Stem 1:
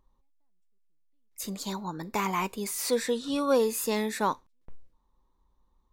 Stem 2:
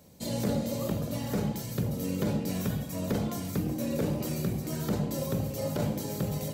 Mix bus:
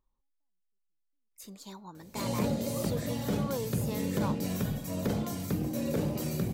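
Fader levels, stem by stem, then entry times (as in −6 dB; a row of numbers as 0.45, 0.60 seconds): −11.5, −1.0 decibels; 0.00, 1.95 seconds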